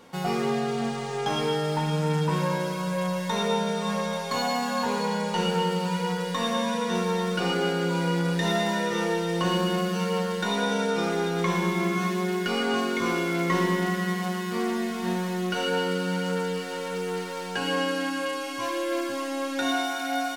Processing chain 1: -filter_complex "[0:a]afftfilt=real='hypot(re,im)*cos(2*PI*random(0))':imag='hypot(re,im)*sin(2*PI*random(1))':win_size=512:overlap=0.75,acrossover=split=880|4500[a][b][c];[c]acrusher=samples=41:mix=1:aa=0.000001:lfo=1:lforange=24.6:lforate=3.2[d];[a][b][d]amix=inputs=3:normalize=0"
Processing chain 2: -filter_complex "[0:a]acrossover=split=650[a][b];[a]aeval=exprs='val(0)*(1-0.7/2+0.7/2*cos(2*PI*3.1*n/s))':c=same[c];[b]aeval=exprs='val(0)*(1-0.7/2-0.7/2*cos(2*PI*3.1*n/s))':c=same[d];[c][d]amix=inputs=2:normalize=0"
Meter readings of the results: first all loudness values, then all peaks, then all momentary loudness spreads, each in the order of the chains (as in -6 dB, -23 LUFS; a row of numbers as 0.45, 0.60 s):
-33.0, -30.0 LUFS; -17.5, -14.5 dBFS; 4, 4 LU